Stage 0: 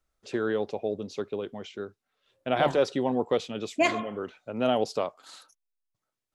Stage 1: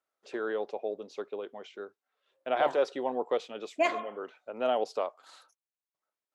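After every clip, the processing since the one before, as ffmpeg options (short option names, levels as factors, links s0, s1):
-af "highpass=480,highshelf=f=2400:g=-10"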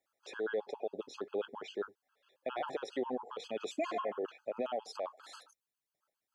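-af "acompressor=threshold=0.0282:ratio=5,alimiter=level_in=2.37:limit=0.0631:level=0:latency=1:release=23,volume=0.422,afftfilt=real='re*gt(sin(2*PI*7.4*pts/sr)*(1-2*mod(floor(b*sr/1024/840),2)),0)':imag='im*gt(sin(2*PI*7.4*pts/sr)*(1-2*mod(floor(b*sr/1024/840),2)),0)':win_size=1024:overlap=0.75,volume=2"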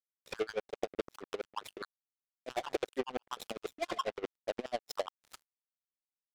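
-af "acompressor=threshold=0.0112:ratio=10,acrusher=bits=6:mix=0:aa=0.5,aeval=exprs='val(0)*pow(10,-24*(0.5-0.5*cos(2*PI*12*n/s))/20)':c=same,volume=3.76"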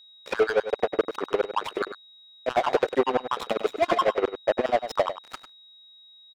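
-filter_complex "[0:a]asplit=2[s0][s1];[s1]highpass=f=720:p=1,volume=12.6,asoftclip=type=tanh:threshold=0.126[s2];[s0][s2]amix=inputs=2:normalize=0,lowpass=f=1100:p=1,volume=0.501,asplit=2[s3][s4];[s4]adelay=99.13,volume=0.282,highshelf=f=4000:g=-2.23[s5];[s3][s5]amix=inputs=2:normalize=0,aeval=exprs='val(0)+0.00126*sin(2*PI*3800*n/s)':c=same,volume=2.66"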